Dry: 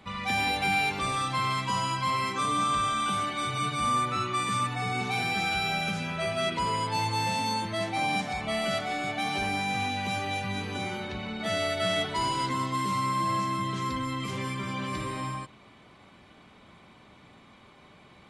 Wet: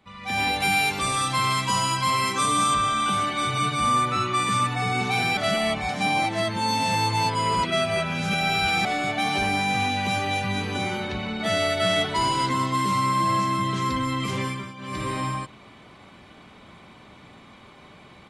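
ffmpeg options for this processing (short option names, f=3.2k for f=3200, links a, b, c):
-filter_complex "[0:a]asettb=1/sr,asplit=3[a][b][c];[a]atrim=end=0.604[d];[b]atrim=start=0.6:end=2.74,asetpts=PTS-STARTPTS,afade=t=in:d=0.004:c=qsin,afade=t=out:st=2.136:d=0.004:c=qsin,highshelf=f=6.3k:g=12[e];[c]atrim=start=2.736[f];[d][e]acrossfade=d=0.004:c1=hsin:c2=qsin[g];[g][f]acrossfade=d=0.004:c1=qsin:c2=hsin,asplit=5[h][i][j][k][l];[h]atrim=end=5.372[m];[i]atrim=start=5.368:end=8.852,asetpts=PTS-STARTPTS,areverse[n];[j]atrim=start=8.848:end=14.74,asetpts=PTS-STARTPTS,afade=t=out:st=5.562:d=0.33:silence=0.177828[o];[k]atrim=start=14.74:end=14.77,asetpts=PTS-STARTPTS,volume=-15dB[p];[l]atrim=start=14.77,asetpts=PTS-STARTPTS,afade=t=in:d=0.33:silence=0.177828[q];[m][n]acrossfade=d=0.004:c1=hsin:c2=hsin[r];[o][p][q]concat=n=3:v=0:a=1[s];[r][s]acrossfade=d=0.004:c1=hsin:c2=hsin,dynaudnorm=f=210:g=3:m=14.5dB,volume=-8.5dB"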